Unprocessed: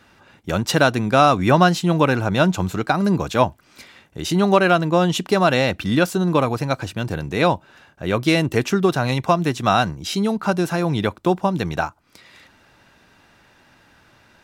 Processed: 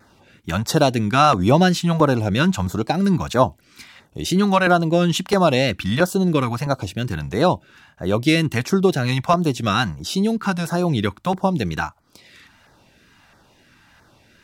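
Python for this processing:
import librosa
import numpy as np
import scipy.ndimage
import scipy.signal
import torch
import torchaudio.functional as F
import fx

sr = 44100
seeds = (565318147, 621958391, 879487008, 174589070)

y = fx.filter_lfo_notch(x, sr, shape='saw_down', hz=1.5, low_hz=280.0, high_hz=3100.0, q=0.92)
y = fx.wow_flutter(y, sr, seeds[0], rate_hz=2.1, depth_cents=48.0)
y = y * 10.0 ** (1.5 / 20.0)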